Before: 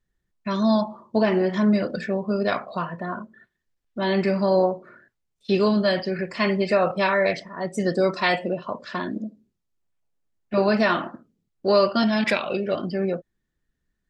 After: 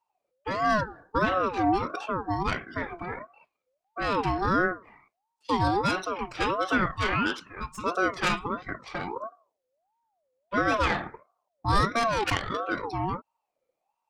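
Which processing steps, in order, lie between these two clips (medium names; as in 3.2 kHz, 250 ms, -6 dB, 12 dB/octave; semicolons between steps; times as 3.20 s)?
tracing distortion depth 0.065 ms; 6.86–7.84 s: high-pass 430 Hz 24 dB/octave; ring modulator with a swept carrier 720 Hz, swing 30%, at 1.5 Hz; trim -2 dB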